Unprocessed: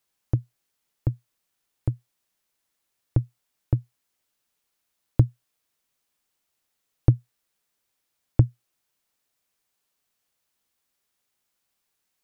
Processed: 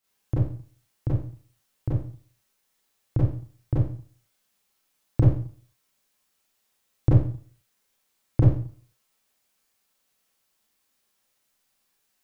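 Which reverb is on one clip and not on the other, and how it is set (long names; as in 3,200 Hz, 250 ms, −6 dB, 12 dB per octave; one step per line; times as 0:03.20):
four-comb reverb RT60 0.46 s, combs from 29 ms, DRR −8.5 dB
level −4 dB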